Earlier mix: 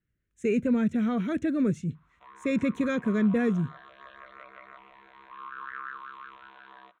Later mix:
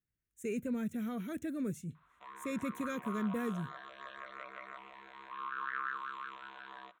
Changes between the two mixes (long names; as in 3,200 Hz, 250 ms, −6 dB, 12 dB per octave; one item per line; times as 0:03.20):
speech −11.5 dB
master: remove high-frequency loss of the air 120 metres